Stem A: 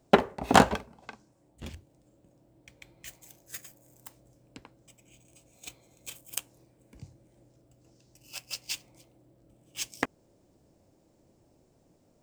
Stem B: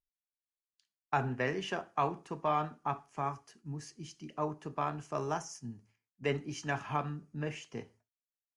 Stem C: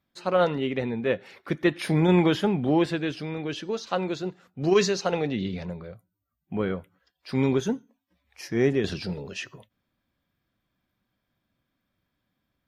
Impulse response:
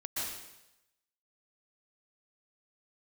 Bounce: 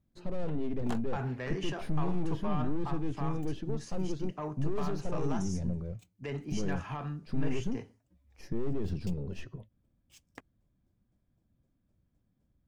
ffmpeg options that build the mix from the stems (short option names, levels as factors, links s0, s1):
-filter_complex "[0:a]aeval=exprs='val(0)*pow(10,-31*if(lt(mod(3.9*n/s,1),2*abs(3.9)/1000),1-mod(3.9*n/s,1)/(2*abs(3.9)/1000),(mod(3.9*n/s,1)-2*abs(3.9)/1000)/(1-2*abs(3.9)/1000))/20)':c=same,adelay=350,volume=0.15[s0];[1:a]alimiter=level_in=1.33:limit=0.0631:level=0:latency=1:release=34,volume=0.75,asoftclip=type=tanh:threshold=0.0335,volume=1[s1];[2:a]aeval=exprs='(tanh(28.2*val(0)+0.4)-tanh(0.4))/28.2':c=same,tiltshelf=f=650:g=9.5,alimiter=limit=0.0708:level=0:latency=1:release=271,volume=0.562[s2];[s0][s1][s2]amix=inputs=3:normalize=0,lowshelf=f=93:g=10"